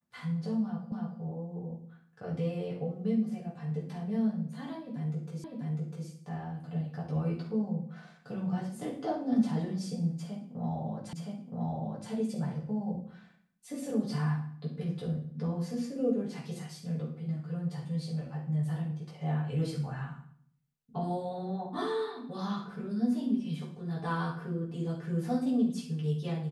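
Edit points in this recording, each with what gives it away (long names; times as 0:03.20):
0:00.92: the same again, the last 0.29 s
0:05.44: the same again, the last 0.65 s
0:11.13: the same again, the last 0.97 s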